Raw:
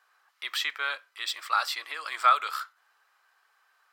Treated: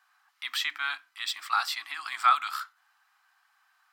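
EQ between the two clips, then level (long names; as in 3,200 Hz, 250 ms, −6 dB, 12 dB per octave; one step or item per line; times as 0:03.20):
Chebyshev band-stop filter 300–730 Hz, order 3
mains-hum notches 50/100/150/200/250/300 Hz
0.0 dB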